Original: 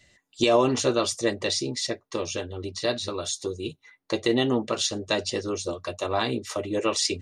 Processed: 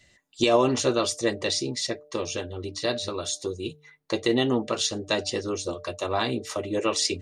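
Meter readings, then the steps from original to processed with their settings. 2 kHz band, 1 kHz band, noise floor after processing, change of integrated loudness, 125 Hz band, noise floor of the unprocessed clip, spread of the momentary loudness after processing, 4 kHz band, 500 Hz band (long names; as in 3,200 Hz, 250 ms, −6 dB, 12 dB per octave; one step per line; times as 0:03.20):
0.0 dB, 0.0 dB, −60 dBFS, 0.0 dB, 0.0 dB, −68 dBFS, 10 LU, 0.0 dB, −0.5 dB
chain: hum removal 149 Hz, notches 5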